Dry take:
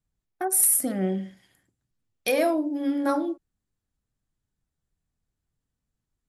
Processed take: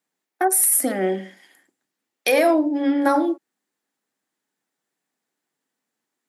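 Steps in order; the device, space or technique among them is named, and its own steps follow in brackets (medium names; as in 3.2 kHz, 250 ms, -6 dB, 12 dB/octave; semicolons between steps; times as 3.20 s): laptop speaker (high-pass 260 Hz 24 dB/octave; peaking EQ 840 Hz +4 dB 0.29 oct; peaking EQ 1.9 kHz +5 dB 0.58 oct; peak limiter -15.5 dBFS, peak gain reduction 7.5 dB); 2.47–3.00 s: low-pass 8.6 kHz -> 4.1 kHz 12 dB/octave; trim +7.5 dB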